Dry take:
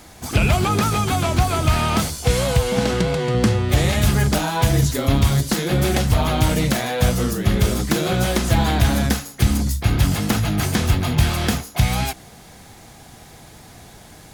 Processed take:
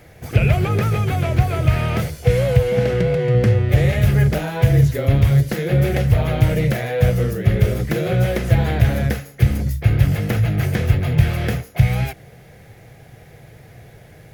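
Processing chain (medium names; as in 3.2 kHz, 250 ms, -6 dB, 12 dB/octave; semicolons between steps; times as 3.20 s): graphic EQ 125/250/500/1000/2000/4000/8000 Hz +11/-7/+10/-9/+7/-6/-10 dB; trim -3.5 dB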